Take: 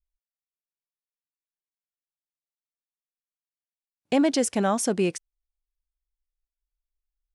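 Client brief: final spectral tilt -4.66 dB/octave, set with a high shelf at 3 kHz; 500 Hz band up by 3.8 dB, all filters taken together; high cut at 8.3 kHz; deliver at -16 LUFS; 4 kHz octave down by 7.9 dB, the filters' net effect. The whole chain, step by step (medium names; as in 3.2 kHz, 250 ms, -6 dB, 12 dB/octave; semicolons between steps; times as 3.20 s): low-pass 8.3 kHz; peaking EQ 500 Hz +5 dB; treble shelf 3 kHz -7.5 dB; peaking EQ 4 kHz -4.5 dB; trim +6.5 dB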